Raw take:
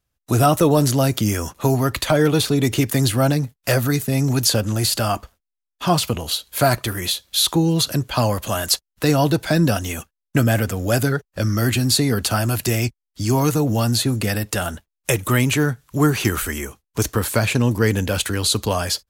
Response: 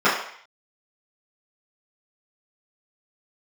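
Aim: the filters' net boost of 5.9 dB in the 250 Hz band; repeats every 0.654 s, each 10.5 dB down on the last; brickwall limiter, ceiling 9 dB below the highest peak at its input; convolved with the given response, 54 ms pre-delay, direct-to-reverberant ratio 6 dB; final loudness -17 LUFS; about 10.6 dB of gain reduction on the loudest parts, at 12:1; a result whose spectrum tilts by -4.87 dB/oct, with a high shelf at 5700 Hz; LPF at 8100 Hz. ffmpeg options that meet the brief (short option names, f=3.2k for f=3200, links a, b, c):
-filter_complex "[0:a]lowpass=8.1k,equalizer=f=250:t=o:g=7.5,highshelf=f=5.7k:g=5,acompressor=threshold=-19dB:ratio=12,alimiter=limit=-15dB:level=0:latency=1,aecho=1:1:654|1308|1962:0.299|0.0896|0.0269,asplit=2[a][b];[1:a]atrim=start_sample=2205,adelay=54[c];[b][c]afir=irnorm=-1:irlink=0,volume=-28dB[d];[a][d]amix=inputs=2:normalize=0,volume=7.5dB"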